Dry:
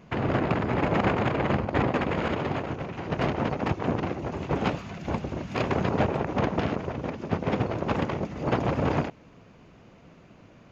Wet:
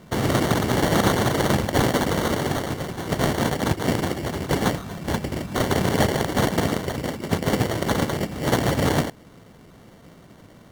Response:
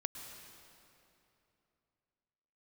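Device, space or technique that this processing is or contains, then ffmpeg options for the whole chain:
crushed at another speed: -af "asetrate=22050,aresample=44100,acrusher=samples=35:mix=1:aa=0.000001,asetrate=88200,aresample=44100,volume=4.5dB"

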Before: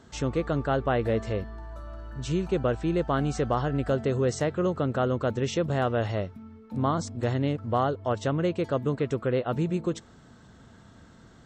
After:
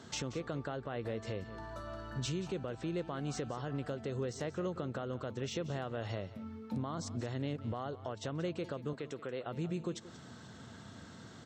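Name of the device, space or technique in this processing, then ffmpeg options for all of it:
broadcast voice chain: -filter_complex "[0:a]highpass=f=82:w=0.5412,highpass=f=82:w=1.3066,deesser=0.9,acompressor=threshold=-35dB:ratio=3,equalizer=f=4.5k:t=o:w=1.7:g=5,alimiter=level_in=5dB:limit=-24dB:level=0:latency=1:release=227,volume=-5dB,asettb=1/sr,asplit=3[a][b][c];[a]atrim=end=8.934[d];[b]atrim=start=8.93:end=9.43,asetpts=PTS-STARTPTS,afade=t=in:d=0.004:c=qsin,afade=t=out:st=0.496:d=0.004:c=qsin,highpass=f=300:p=1[e];[c]atrim=start=9.426[f];[d][e]acrossfade=d=0.004:c1=hsin:c2=qsin[g];[g][f]acrossfade=d=0.004:c1=qsin:c2=hsin,aecho=1:1:181:0.168,volume=1dB"

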